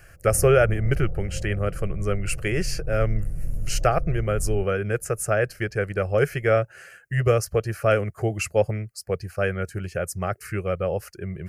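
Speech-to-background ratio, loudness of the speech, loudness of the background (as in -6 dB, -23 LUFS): 9.5 dB, -25.0 LUFS, -34.5 LUFS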